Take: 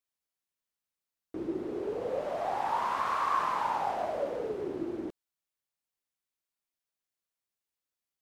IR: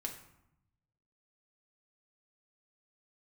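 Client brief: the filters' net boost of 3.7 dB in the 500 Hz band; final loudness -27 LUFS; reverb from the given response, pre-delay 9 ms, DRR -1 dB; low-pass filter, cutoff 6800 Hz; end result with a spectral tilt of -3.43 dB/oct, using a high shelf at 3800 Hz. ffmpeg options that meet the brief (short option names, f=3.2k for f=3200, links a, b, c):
-filter_complex "[0:a]lowpass=6.8k,equalizer=f=500:t=o:g=4.5,highshelf=f=3.8k:g=3.5,asplit=2[a][b];[1:a]atrim=start_sample=2205,adelay=9[c];[b][c]afir=irnorm=-1:irlink=0,volume=2dB[d];[a][d]amix=inputs=2:normalize=0"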